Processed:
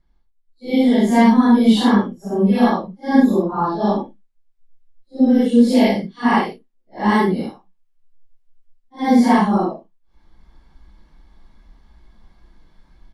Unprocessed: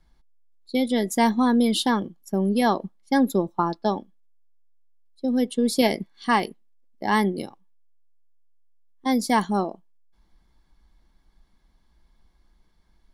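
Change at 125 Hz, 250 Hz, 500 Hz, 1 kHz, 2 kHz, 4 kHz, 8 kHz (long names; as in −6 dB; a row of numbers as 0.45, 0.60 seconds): +7.5 dB, +9.0 dB, +5.5 dB, +5.0 dB, +4.0 dB, +1.5 dB, can't be measured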